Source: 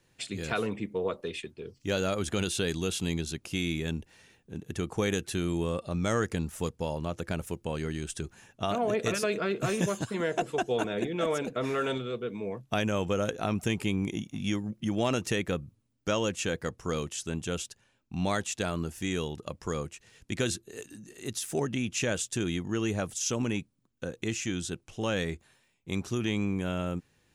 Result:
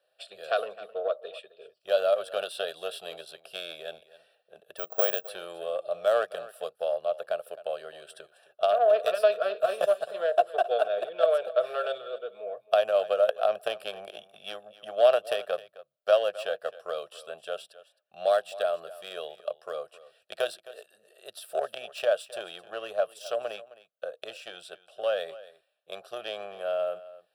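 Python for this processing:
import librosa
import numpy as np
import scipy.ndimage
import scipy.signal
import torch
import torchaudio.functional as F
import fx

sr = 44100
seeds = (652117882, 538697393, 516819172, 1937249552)

p1 = fx.cheby_harmonics(x, sr, harmonics=(3,), levels_db=(-13,), full_scale_db=-14.0)
p2 = fx.highpass_res(p1, sr, hz=620.0, q=5.9)
p3 = fx.fixed_phaser(p2, sr, hz=1400.0, stages=8)
p4 = p3 + fx.echo_single(p3, sr, ms=263, db=-17.5, dry=0)
p5 = fx.resample_bad(p4, sr, factor=2, down='filtered', up='zero_stuff', at=(4.77, 5.29))
y = F.gain(torch.from_numpy(p5), 5.0).numpy()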